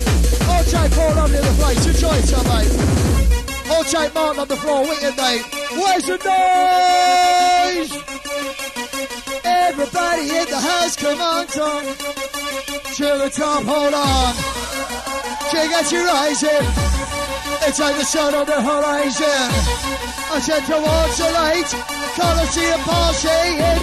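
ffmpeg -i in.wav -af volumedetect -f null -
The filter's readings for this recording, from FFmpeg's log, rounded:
mean_volume: -17.1 dB
max_volume: -3.2 dB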